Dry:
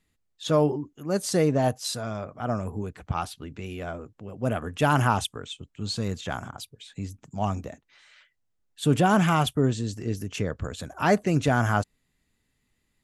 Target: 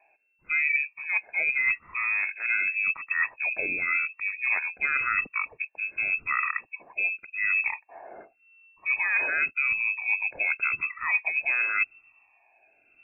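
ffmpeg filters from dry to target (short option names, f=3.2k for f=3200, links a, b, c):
-af "afftfilt=real='re*pow(10,19/40*sin(2*PI*(1*log(max(b,1)*sr/1024/100)/log(2)-(0.88)*(pts-256)/sr)))':imag='im*pow(10,19/40*sin(2*PI*(1*log(max(b,1)*sr/1024/100)/log(2)-(0.88)*(pts-256)/sr)))':win_size=1024:overlap=0.75,areverse,acompressor=threshold=-31dB:ratio=16,areverse,lowpass=f=2.3k:t=q:w=0.5098,lowpass=f=2.3k:t=q:w=0.6013,lowpass=f=2.3k:t=q:w=0.9,lowpass=f=2.3k:t=q:w=2.563,afreqshift=-2700,volume=8.5dB"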